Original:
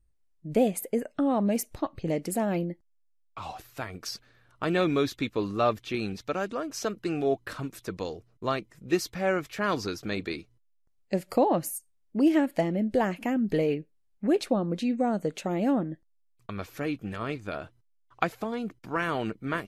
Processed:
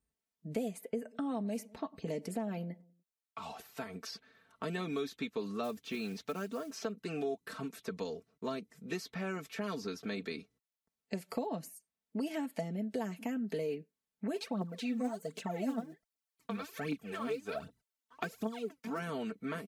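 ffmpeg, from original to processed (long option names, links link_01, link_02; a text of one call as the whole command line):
ffmpeg -i in.wav -filter_complex "[0:a]asettb=1/sr,asplit=3[link_01][link_02][link_03];[link_01]atrim=end=0.834[link_04];[link_02]atrim=start=0.83:end=3.99,asetpts=PTS-STARTPTS,afade=type=in:duration=0.004:curve=qsin,afade=type=out:start_time=3.156:duration=0.004:curve=qsin,asplit=2[link_05][link_06];[link_06]adelay=97,lowpass=frequency=840:poles=1,volume=-23dB,asplit=2[link_07][link_08];[link_08]adelay=97,lowpass=frequency=840:poles=1,volume=0.45,asplit=2[link_09][link_10];[link_10]adelay=97,lowpass=frequency=840:poles=1,volume=0.45[link_11];[link_05][link_07][link_09][link_11]amix=inputs=4:normalize=0,atrim=end_sample=139356[link_12];[link_03]atrim=start=3.986[link_13];[link_04][link_12]acrossfade=duration=0.004:curve1=hsin:curve2=qsin[link_14];[link_14][link_13]acrossfade=duration=0.004:curve1=qsin:curve2=hsin,asplit=3[link_15][link_16][link_17];[link_15]afade=type=out:start_time=5.63:duration=0.02[link_18];[link_16]acrusher=bits=6:mode=log:mix=0:aa=0.000001,afade=type=in:start_time=5.63:duration=0.02,afade=type=out:start_time=6.84:duration=0.02[link_19];[link_17]afade=type=in:start_time=6.84:duration=0.02[link_20];[link_18][link_19][link_20]amix=inputs=3:normalize=0,asplit=3[link_21][link_22][link_23];[link_21]afade=type=out:start_time=14.34:duration=0.02[link_24];[link_22]aphaser=in_gain=1:out_gain=1:delay=4.7:decay=0.78:speed=1.3:type=triangular,afade=type=in:start_time=14.34:duration=0.02,afade=type=out:start_time=18.98:duration=0.02[link_25];[link_23]afade=type=in:start_time=18.98:duration=0.02[link_26];[link_24][link_25][link_26]amix=inputs=3:normalize=0,highpass=130,aecho=1:1:4.5:0.79,acrossover=split=440|4500[link_27][link_28][link_29];[link_27]acompressor=threshold=-34dB:ratio=4[link_30];[link_28]acompressor=threshold=-38dB:ratio=4[link_31];[link_29]acompressor=threshold=-50dB:ratio=4[link_32];[link_30][link_31][link_32]amix=inputs=3:normalize=0,volume=-4dB" out.wav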